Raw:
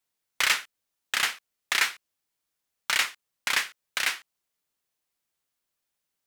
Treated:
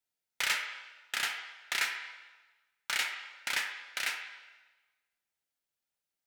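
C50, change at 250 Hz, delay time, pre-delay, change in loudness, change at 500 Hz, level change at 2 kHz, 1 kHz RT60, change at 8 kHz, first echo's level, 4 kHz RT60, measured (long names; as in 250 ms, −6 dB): 6.0 dB, −7.5 dB, no echo audible, 8 ms, −7.0 dB, −6.5 dB, −6.0 dB, 1.2 s, −7.5 dB, no echo audible, 1.1 s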